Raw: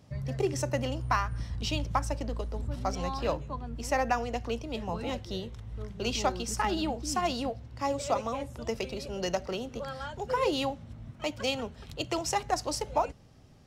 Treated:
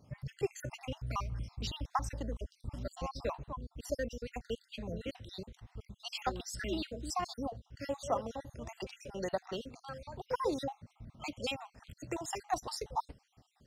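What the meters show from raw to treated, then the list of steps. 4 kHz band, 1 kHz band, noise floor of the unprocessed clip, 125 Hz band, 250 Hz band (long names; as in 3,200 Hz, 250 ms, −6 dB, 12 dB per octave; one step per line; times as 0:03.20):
−7.5 dB, −7.5 dB, −52 dBFS, −7.5 dB, −7.5 dB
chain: time-frequency cells dropped at random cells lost 55%
level −4 dB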